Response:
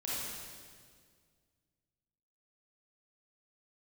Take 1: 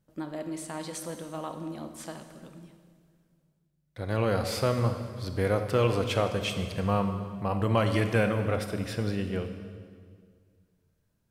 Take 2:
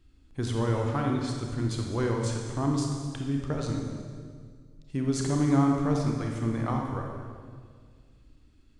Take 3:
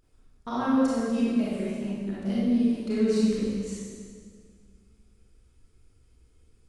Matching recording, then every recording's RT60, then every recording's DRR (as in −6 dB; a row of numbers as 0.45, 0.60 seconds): 3; 1.9, 1.9, 1.9 seconds; 7.0, 0.5, −8.0 decibels